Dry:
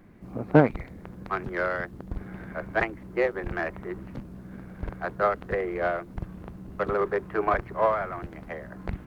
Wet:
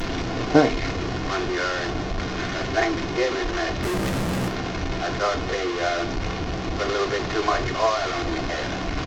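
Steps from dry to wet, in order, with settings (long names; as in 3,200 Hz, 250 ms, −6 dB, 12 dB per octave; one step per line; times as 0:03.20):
linear delta modulator 32 kbit/s, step −21.5 dBFS
comb filter 2.8 ms, depth 45%
0:03.83–0:04.48: log-companded quantiser 2 bits
reverb whose tail is shaped and stops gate 130 ms falling, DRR 6 dB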